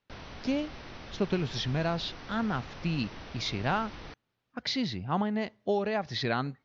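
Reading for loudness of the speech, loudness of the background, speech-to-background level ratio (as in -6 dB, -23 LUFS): -32.0 LUFS, -45.5 LUFS, 13.5 dB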